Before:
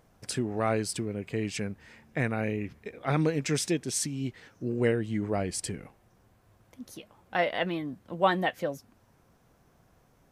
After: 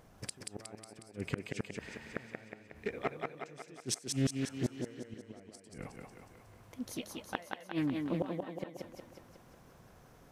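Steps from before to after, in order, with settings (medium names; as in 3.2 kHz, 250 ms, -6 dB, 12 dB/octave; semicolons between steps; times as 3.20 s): inverted gate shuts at -23 dBFS, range -31 dB; thinning echo 182 ms, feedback 59%, high-pass 170 Hz, level -3 dB; loudspeaker Doppler distortion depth 0.4 ms; trim +3 dB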